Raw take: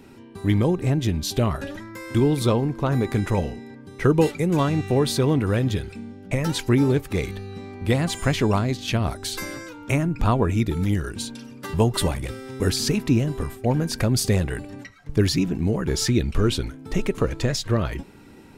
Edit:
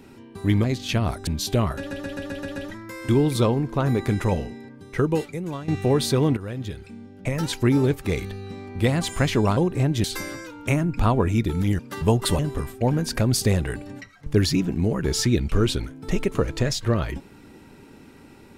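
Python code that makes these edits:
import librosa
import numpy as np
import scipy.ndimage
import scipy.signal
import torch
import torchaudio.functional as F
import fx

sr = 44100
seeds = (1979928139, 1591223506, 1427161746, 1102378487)

y = fx.edit(x, sr, fx.swap(start_s=0.64, length_s=0.47, other_s=8.63, other_length_s=0.63),
    fx.stutter(start_s=1.62, slice_s=0.13, count=7),
    fx.fade_out_to(start_s=3.63, length_s=1.11, floor_db=-15.0),
    fx.fade_in_from(start_s=5.43, length_s=1.81, curve='qsin', floor_db=-13.5),
    fx.cut(start_s=11.01, length_s=0.5),
    fx.cut(start_s=12.11, length_s=1.11), tone=tone)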